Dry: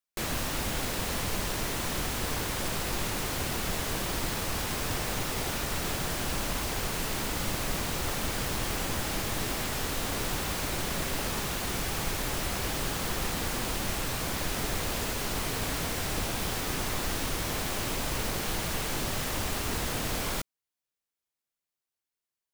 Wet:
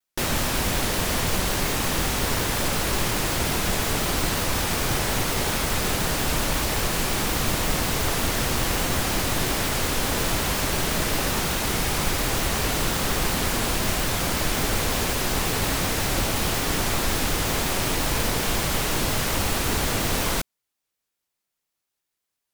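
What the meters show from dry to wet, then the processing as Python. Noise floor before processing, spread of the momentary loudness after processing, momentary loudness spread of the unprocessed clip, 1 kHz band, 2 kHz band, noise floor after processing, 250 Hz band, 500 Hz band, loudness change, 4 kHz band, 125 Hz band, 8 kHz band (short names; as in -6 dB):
under -85 dBFS, 0 LU, 0 LU, +7.5 dB, +7.5 dB, -83 dBFS, +7.5 dB, +7.5 dB, +7.5 dB, +7.5 dB, +7.5 dB, +7.5 dB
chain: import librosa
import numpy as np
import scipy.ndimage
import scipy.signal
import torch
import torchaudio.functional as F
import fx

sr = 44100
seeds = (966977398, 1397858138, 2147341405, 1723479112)

y = fx.vibrato_shape(x, sr, shape='saw_down', rate_hz=5.5, depth_cents=250.0)
y = F.gain(torch.from_numpy(y), 7.5).numpy()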